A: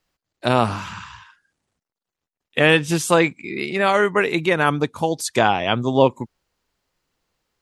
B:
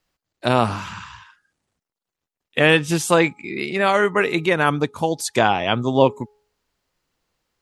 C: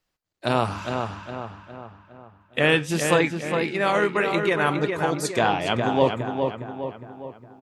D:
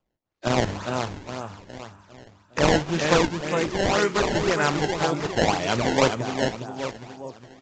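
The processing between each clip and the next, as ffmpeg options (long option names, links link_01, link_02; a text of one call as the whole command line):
ffmpeg -i in.wav -af "bandreject=frequency=419.5:width_type=h:width=4,bandreject=frequency=839:width_type=h:width=4,bandreject=frequency=1258.5:width_type=h:width=4" out.wav
ffmpeg -i in.wav -filter_complex "[0:a]flanger=delay=2:depth=9.9:regen=-77:speed=1.6:shape=sinusoidal,asplit=2[link_01][link_02];[link_02]adelay=410,lowpass=frequency=2700:poles=1,volume=-5dB,asplit=2[link_03][link_04];[link_04]adelay=410,lowpass=frequency=2700:poles=1,volume=0.5,asplit=2[link_05][link_06];[link_06]adelay=410,lowpass=frequency=2700:poles=1,volume=0.5,asplit=2[link_07][link_08];[link_08]adelay=410,lowpass=frequency=2700:poles=1,volume=0.5,asplit=2[link_09][link_10];[link_10]adelay=410,lowpass=frequency=2700:poles=1,volume=0.5,asplit=2[link_11][link_12];[link_12]adelay=410,lowpass=frequency=2700:poles=1,volume=0.5[link_13];[link_01][link_03][link_05][link_07][link_09][link_11][link_13]amix=inputs=7:normalize=0" out.wav
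ffmpeg -i in.wav -af "acrusher=samples=21:mix=1:aa=0.000001:lfo=1:lforange=33.6:lforate=1.9" -ar 16000 -c:a aac -b:a 32k out.aac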